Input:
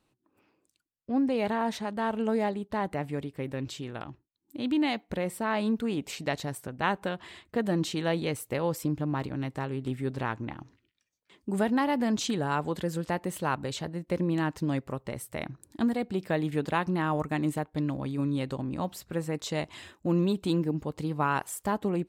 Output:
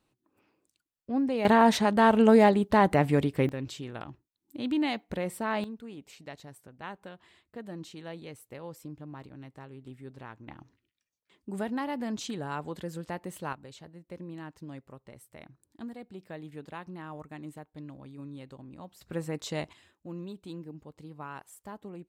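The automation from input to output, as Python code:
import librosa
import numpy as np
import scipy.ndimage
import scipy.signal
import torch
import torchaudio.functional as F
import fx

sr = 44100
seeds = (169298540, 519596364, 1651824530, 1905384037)

y = fx.gain(x, sr, db=fx.steps((0.0, -1.5), (1.45, 9.0), (3.49, -1.5), (5.64, -13.5), (10.48, -6.5), (13.53, -14.0), (19.01, -2.5), (19.73, -14.5)))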